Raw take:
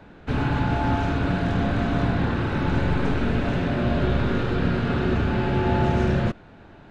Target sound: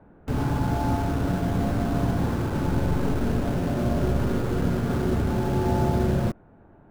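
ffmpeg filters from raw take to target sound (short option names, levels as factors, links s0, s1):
-filter_complex "[0:a]lowpass=1100,asplit=2[s0][s1];[s1]acrusher=bits=4:mix=0:aa=0.000001,volume=0.531[s2];[s0][s2]amix=inputs=2:normalize=0,volume=0.562"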